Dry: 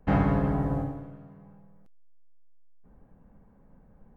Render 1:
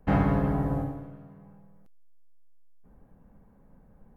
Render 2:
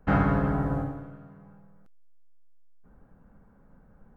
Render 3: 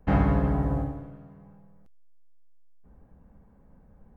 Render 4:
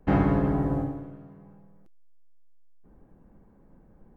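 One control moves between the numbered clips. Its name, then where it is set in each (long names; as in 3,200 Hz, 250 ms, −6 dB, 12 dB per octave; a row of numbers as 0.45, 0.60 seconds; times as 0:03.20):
parametric band, centre frequency: 12,000, 1,400, 64, 340 Hertz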